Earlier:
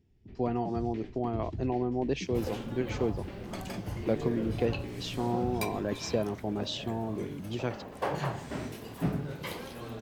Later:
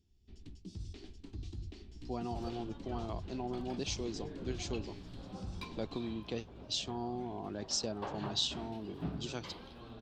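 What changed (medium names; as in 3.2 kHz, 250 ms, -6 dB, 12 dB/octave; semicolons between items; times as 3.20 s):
speech: entry +1.70 s; second sound: add distance through air 370 m; master: add graphic EQ 125/250/500/1000/2000/4000/8000 Hz -10/-4/-10/-3/-11/+6/+6 dB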